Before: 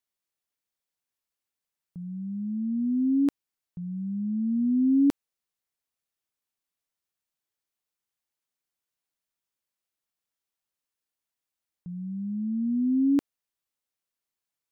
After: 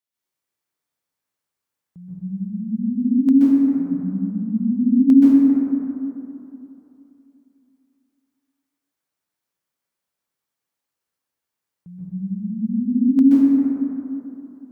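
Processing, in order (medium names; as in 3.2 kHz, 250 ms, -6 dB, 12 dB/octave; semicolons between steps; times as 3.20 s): high-pass 60 Hz; plate-style reverb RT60 3.1 s, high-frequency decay 0.3×, pre-delay 115 ms, DRR -9 dB; trim -2.5 dB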